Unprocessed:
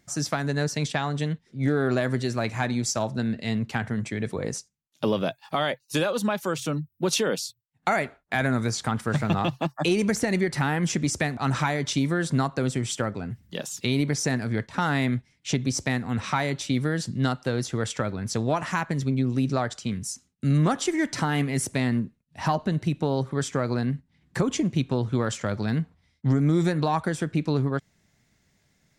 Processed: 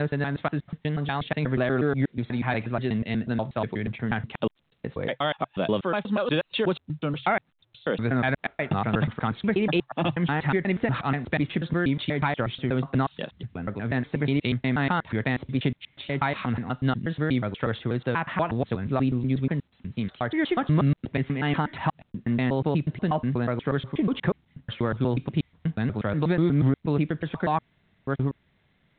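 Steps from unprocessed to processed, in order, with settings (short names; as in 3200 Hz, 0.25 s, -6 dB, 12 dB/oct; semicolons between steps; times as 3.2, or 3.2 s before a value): slices in reverse order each 0.121 s, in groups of 6; A-law 64 kbps 8000 Hz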